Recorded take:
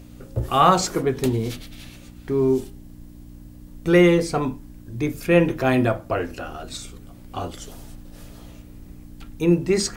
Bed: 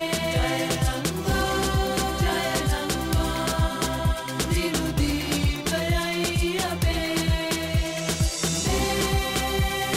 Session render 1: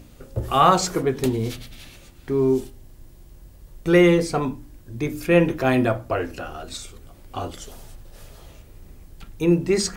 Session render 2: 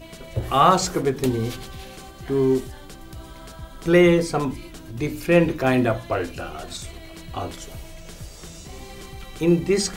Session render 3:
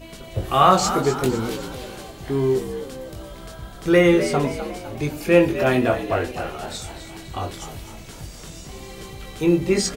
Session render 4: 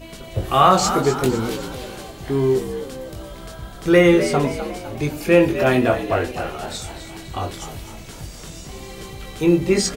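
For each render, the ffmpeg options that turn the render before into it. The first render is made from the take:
-af "bandreject=f=60:t=h:w=4,bandreject=f=120:t=h:w=4,bandreject=f=180:t=h:w=4,bandreject=f=240:t=h:w=4,bandreject=f=300:t=h:w=4"
-filter_complex "[1:a]volume=-16.5dB[a];[0:a][a]amix=inputs=2:normalize=0"
-filter_complex "[0:a]asplit=2[a][b];[b]adelay=21,volume=-5dB[c];[a][c]amix=inputs=2:normalize=0,asplit=6[d][e][f][g][h][i];[e]adelay=253,afreqshift=63,volume=-11dB[j];[f]adelay=506,afreqshift=126,volume=-17.2dB[k];[g]adelay=759,afreqshift=189,volume=-23.4dB[l];[h]adelay=1012,afreqshift=252,volume=-29.6dB[m];[i]adelay=1265,afreqshift=315,volume=-35.8dB[n];[d][j][k][l][m][n]amix=inputs=6:normalize=0"
-af "volume=2dB,alimiter=limit=-2dB:level=0:latency=1"

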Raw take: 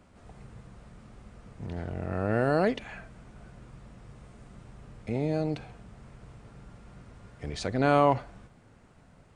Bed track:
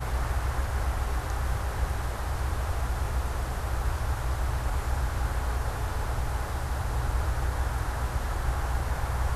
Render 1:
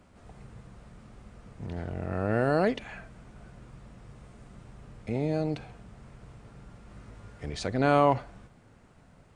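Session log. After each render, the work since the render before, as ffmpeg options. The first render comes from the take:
-filter_complex "[0:a]asettb=1/sr,asplit=3[a][b][c];[a]atrim=end=6.884[d];[b]atrim=start=6.88:end=7.45,asetpts=PTS-STARTPTS,afade=t=in:d=0.004:c=qsin,afade=t=out:st=0.566:d=0.004:c=qsin,asplit=2[e][f];[f]adelay=19,volume=-3dB[g];[e][g]amix=inputs=2:normalize=0,atrim=end_sample=25137[h];[c]atrim=start=7.446[i];[d][h]acrossfade=d=0.004:c1=hsin:c2=qsin[j];[j][i]acrossfade=d=0.004:c1=qsin:c2=hsin"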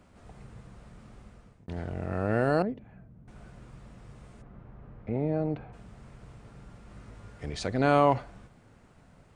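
-filter_complex "[0:a]asettb=1/sr,asplit=3[a][b][c];[a]atrim=end=2.624[d];[b]atrim=start=2.62:end=3.28,asetpts=PTS-STARTPTS,afade=t=in:d=0.004:c=qsin,afade=t=out:st=0.656:d=0.004:c=qsin,bandpass=f=130:t=q:w=0.82[e];[c]atrim=start=3.276[f];[d][e]acrossfade=d=0.004:c1=hsin:c2=qsin[g];[g][f]acrossfade=d=0.004:c1=qsin:c2=hsin,asplit=3[h][i][j];[h]afade=t=out:st=4.41:d=0.02[k];[i]lowpass=1.6k,afade=t=in:st=4.41:d=0.02,afade=t=out:st=5.72:d=0.02[l];[j]afade=t=in:st=5.72:d=0.02[m];[k][l][m]amix=inputs=3:normalize=0,asplit=2[n][o];[n]atrim=end=1.68,asetpts=PTS-STARTPTS,afade=t=out:st=1.07:d=0.61:c=qsin[p];[o]atrim=start=1.68,asetpts=PTS-STARTPTS,afade=t=in:d=0.004:c=hsin[q];[p][q]concat=n=2:v=0:a=1"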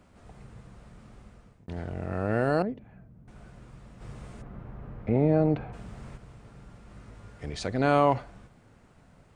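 -filter_complex "[0:a]asplit=3[a][b][c];[a]afade=t=out:st=4:d=0.02[d];[b]acontrast=62,afade=t=in:st=4:d=0.02,afade=t=out:st=6.16:d=0.02[e];[c]afade=t=in:st=6.16:d=0.02[f];[d][e][f]amix=inputs=3:normalize=0"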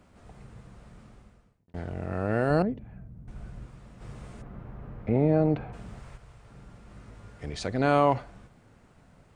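-filter_complex "[0:a]asettb=1/sr,asplit=3[a][b][c];[a]atrim=end=2.504[d];[b]atrim=start=2.5:end=3.66,asetpts=PTS-STARTPTS,afade=t=in:d=0.004:c=qsin,afade=t=out:st=1.156:d=0.004:c=qsin,lowshelf=f=150:g=11[e];[c]atrim=start=3.656[f];[d][e]acrossfade=d=0.004:c1=hsin:c2=qsin[g];[g][f]acrossfade=d=0.004:c1=qsin:c2=hsin,asettb=1/sr,asplit=3[h][i][j];[h]atrim=end=5.994[k];[i]atrim=start=5.99:end=6.5,asetpts=PTS-STARTPTS,afade=t=in:d=0.004:c=qsin,afade=t=out:st=0.506:d=0.004:c=qsin,equalizer=f=240:w=0.95:g=-10.5[l];[j]atrim=start=6.496[m];[k][l]acrossfade=d=0.004:c1=hsin:c2=qsin[n];[n][m]acrossfade=d=0.004:c1=qsin:c2=hsin,asplit=2[o][p];[o]atrim=end=1.74,asetpts=PTS-STARTPTS,afade=t=out:st=1:d=0.74[q];[p]atrim=start=1.74,asetpts=PTS-STARTPTS,afade=t=in:d=0.004:c=hsin[r];[q][r]concat=n=2:v=0:a=1"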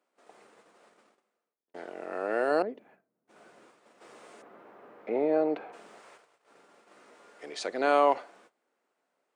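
-af "highpass=f=340:w=0.5412,highpass=f=340:w=1.3066,agate=range=-16dB:threshold=-58dB:ratio=16:detection=peak"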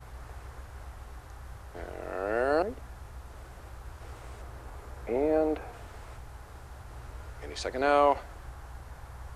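-filter_complex "[1:a]volume=-16dB[a];[0:a][a]amix=inputs=2:normalize=0"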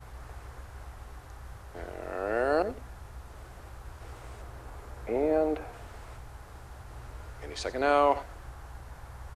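-af "aecho=1:1:91:0.141"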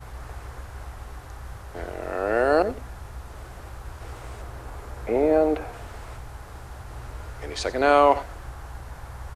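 -af "volume=6.5dB"

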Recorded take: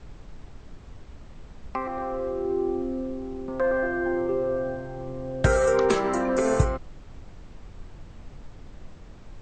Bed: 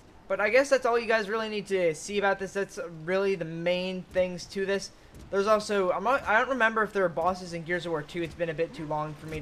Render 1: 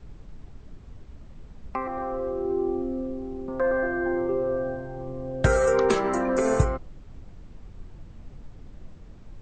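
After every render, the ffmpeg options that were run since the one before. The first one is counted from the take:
-af "afftdn=nr=6:nf=-46"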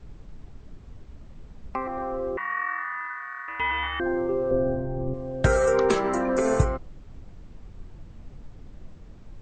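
-filter_complex "[0:a]asettb=1/sr,asplit=3[a][b][c];[a]atrim=end=2.374[d];[b]atrim=start=2.37:end=4,asetpts=PTS-STARTPTS,afade=t=in:d=0.004:c=qsin,afade=t=out:st=1.626:d=0.004:c=qsin,aeval=exprs='val(0)*sin(2*PI*1500*n/s)':c=same[e];[c]atrim=start=3.996[f];[d][e]acrossfade=d=0.004:c1=hsin:c2=qsin[g];[g][f]acrossfade=d=0.004:c1=qsin:c2=hsin,asettb=1/sr,asplit=3[h][i][j];[h]atrim=end=4.514[k];[i]atrim=start=4.51:end=5.14,asetpts=PTS-STARTPTS,afade=t=in:d=0.004:c=qsin,afade=t=out:st=0.626:d=0.004:c=qsin,tiltshelf=f=870:g=8.5[l];[j]atrim=start=5.136[m];[k][l]acrossfade=d=0.004:c1=hsin:c2=qsin[n];[n][m]acrossfade=d=0.004:c1=qsin:c2=hsin"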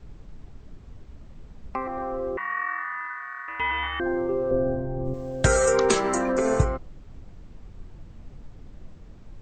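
-filter_complex "[0:a]asplit=3[a][b][c];[a]afade=t=out:st=5.04:d=0.02[d];[b]aemphasis=mode=production:type=75kf,afade=t=in:st=5.04:d=0.02,afade=t=out:st=6.31:d=0.02[e];[c]afade=t=in:st=6.31:d=0.02[f];[d][e][f]amix=inputs=3:normalize=0"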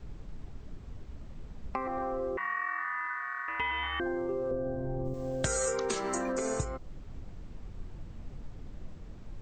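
-filter_complex "[0:a]acrossover=split=3800[a][b];[a]acompressor=threshold=-30dB:ratio=6[c];[b]alimiter=level_in=1dB:limit=-24dB:level=0:latency=1:release=245,volume=-1dB[d];[c][d]amix=inputs=2:normalize=0"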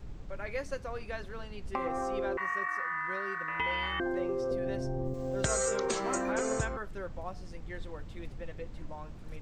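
-filter_complex "[1:a]volume=-15dB[a];[0:a][a]amix=inputs=2:normalize=0"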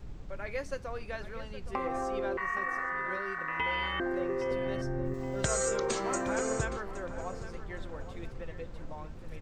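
-filter_complex "[0:a]asplit=2[a][b];[b]adelay=817,lowpass=f=3.5k:p=1,volume=-12dB,asplit=2[c][d];[d]adelay=817,lowpass=f=3.5k:p=1,volume=0.44,asplit=2[e][f];[f]adelay=817,lowpass=f=3.5k:p=1,volume=0.44,asplit=2[g][h];[h]adelay=817,lowpass=f=3.5k:p=1,volume=0.44[i];[a][c][e][g][i]amix=inputs=5:normalize=0"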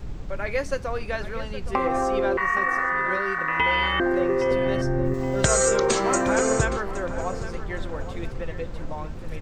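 -af "volume=10dB"

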